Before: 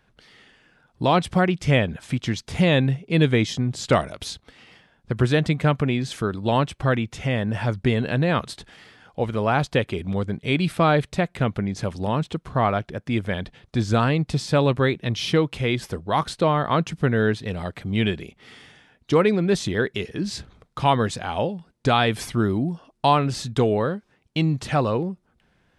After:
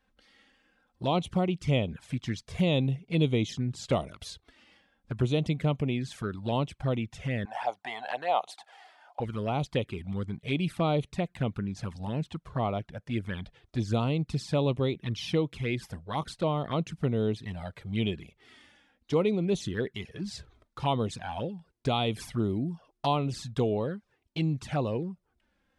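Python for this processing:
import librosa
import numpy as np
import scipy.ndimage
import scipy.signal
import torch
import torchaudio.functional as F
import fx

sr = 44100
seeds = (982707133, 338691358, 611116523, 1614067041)

y = fx.highpass_res(x, sr, hz=760.0, q=8.3, at=(7.45, 9.2))
y = fx.env_flanger(y, sr, rest_ms=3.9, full_db=-17.0)
y = F.gain(torch.from_numpy(y), -6.5).numpy()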